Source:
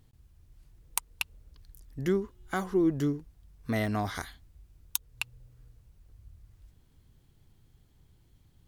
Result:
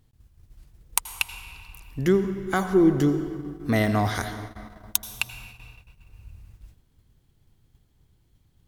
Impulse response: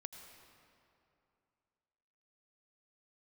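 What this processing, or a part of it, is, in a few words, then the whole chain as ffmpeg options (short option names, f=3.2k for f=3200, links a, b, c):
keyed gated reverb: -filter_complex "[0:a]asplit=3[a][b][c];[1:a]atrim=start_sample=2205[d];[b][d]afir=irnorm=-1:irlink=0[e];[c]apad=whole_len=382744[f];[e][f]sidechaingate=range=-33dB:threshold=-55dB:ratio=16:detection=peak,volume=10dB[g];[a][g]amix=inputs=2:normalize=0,volume=-1.5dB"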